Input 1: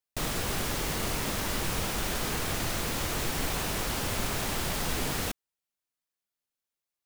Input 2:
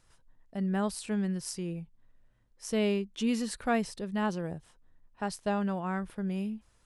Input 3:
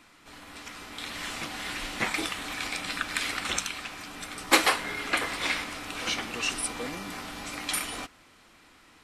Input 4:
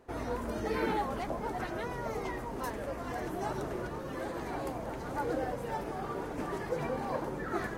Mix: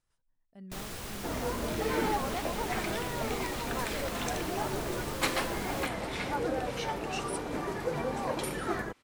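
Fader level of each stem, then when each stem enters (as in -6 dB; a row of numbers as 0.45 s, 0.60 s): -9.5 dB, -16.0 dB, -10.0 dB, +1.5 dB; 0.55 s, 0.00 s, 0.70 s, 1.15 s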